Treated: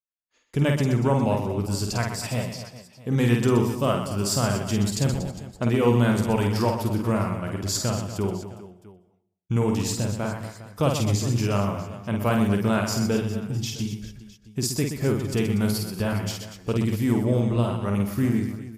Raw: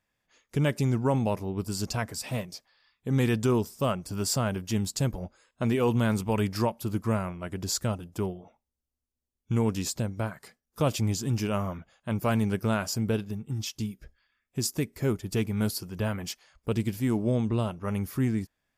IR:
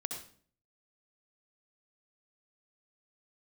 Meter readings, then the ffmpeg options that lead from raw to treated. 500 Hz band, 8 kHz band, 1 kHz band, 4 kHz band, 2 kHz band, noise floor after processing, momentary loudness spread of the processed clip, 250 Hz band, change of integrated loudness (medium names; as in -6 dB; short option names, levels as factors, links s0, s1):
+4.5 dB, +3.5 dB, +5.0 dB, +4.5 dB, +4.5 dB, -61 dBFS, 10 LU, +5.0 dB, +4.5 dB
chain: -filter_complex "[0:a]agate=range=0.0224:threshold=0.00141:ratio=3:detection=peak,highshelf=f=10000:g=-3.5,aecho=1:1:50|125|237.5|406.2|659.4:0.631|0.398|0.251|0.158|0.1,asplit=2[s0][s1];[1:a]atrim=start_sample=2205,adelay=124[s2];[s1][s2]afir=irnorm=-1:irlink=0,volume=0.133[s3];[s0][s3]amix=inputs=2:normalize=0,volume=1.33"